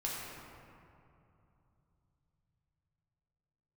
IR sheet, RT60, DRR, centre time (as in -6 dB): 2.8 s, -5.5 dB, 0.14 s